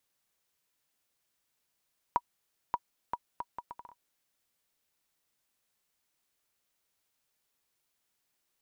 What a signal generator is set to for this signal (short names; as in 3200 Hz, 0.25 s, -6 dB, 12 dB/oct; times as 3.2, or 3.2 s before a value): bouncing ball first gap 0.58 s, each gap 0.68, 964 Hz, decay 48 ms -14.5 dBFS